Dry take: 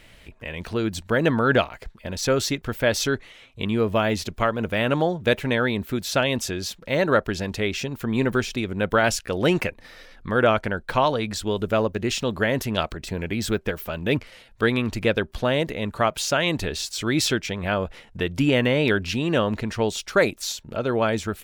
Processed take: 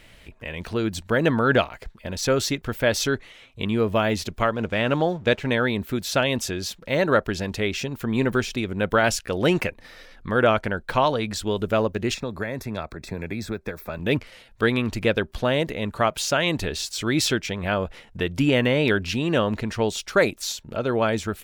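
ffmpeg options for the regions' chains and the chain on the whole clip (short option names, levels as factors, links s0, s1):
-filter_complex "[0:a]asettb=1/sr,asplit=3[s0][s1][s2];[s0]atrim=end=4.554[s3];[s1]atrim=start=4.55:end=5.46,asetpts=PTS-STARTPTS,afade=t=in:d=0.004:c=qsin,afade=t=out:st=0.906:d=0.004:c=qsin,lowpass=f=7500:w=0.5412,lowpass=f=7500:w=1.3066,aeval=exprs='sgn(val(0))*max(abs(val(0))-0.00299,0)':c=same[s4];[s2]atrim=start=5.456[s5];[s3][s4]acrossfade=d=0.004:c1=hsin:c2=qsin[s6];[s6][s5]acrossfade=d=0.004:c1=qsin:c2=hsin,asettb=1/sr,asplit=3[s7][s8][s9];[s7]atrim=end=12.144[s10];[s8]atrim=start=12.14:end=13.99,asetpts=PTS-STARTPTS,afade=t=in:d=0.004:c=qsin,afade=t=out:st=1.846:d=0.004:c=qsin,acrossover=split=88|2700[s11][s12][s13];[s11]acompressor=threshold=0.00708:ratio=4[s14];[s12]acompressor=threshold=0.0447:ratio=4[s15];[s13]acompressor=threshold=0.00794:ratio=4[s16];[s14][s15][s16]amix=inputs=3:normalize=0,asuperstop=centerf=3000:order=4:qfactor=4.1[s17];[s9]atrim=start=13.986[s18];[s10][s17]acrossfade=d=0.004:c1=hsin:c2=qsin[s19];[s19][s18]acrossfade=d=0.004:c1=qsin:c2=hsin"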